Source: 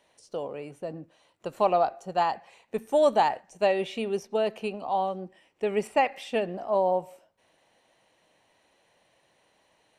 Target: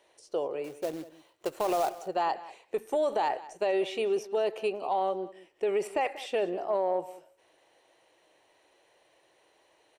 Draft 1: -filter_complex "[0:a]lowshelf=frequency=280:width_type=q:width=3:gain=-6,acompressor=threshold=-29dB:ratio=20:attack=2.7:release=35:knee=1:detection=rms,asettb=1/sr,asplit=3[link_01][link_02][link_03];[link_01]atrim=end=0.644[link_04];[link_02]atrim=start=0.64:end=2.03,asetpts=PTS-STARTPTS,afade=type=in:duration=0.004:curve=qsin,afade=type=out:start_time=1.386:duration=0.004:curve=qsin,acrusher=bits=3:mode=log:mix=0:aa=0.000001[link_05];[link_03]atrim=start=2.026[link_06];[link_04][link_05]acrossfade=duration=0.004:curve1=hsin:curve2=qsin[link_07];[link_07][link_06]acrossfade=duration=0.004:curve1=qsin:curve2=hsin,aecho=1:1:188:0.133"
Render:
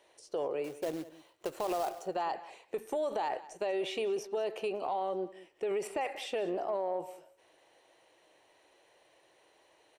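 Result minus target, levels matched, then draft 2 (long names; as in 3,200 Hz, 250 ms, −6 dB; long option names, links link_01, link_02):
downward compressor: peak gain reduction +5.5 dB
-filter_complex "[0:a]lowshelf=frequency=280:width_type=q:width=3:gain=-6,acompressor=threshold=-23dB:ratio=20:attack=2.7:release=35:knee=1:detection=rms,asettb=1/sr,asplit=3[link_01][link_02][link_03];[link_01]atrim=end=0.644[link_04];[link_02]atrim=start=0.64:end=2.03,asetpts=PTS-STARTPTS,afade=type=in:duration=0.004:curve=qsin,afade=type=out:start_time=1.386:duration=0.004:curve=qsin,acrusher=bits=3:mode=log:mix=0:aa=0.000001[link_05];[link_03]atrim=start=2.026[link_06];[link_04][link_05]acrossfade=duration=0.004:curve1=hsin:curve2=qsin[link_07];[link_07][link_06]acrossfade=duration=0.004:curve1=qsin:curve2=hsin,aecho=1:1:188:0.133"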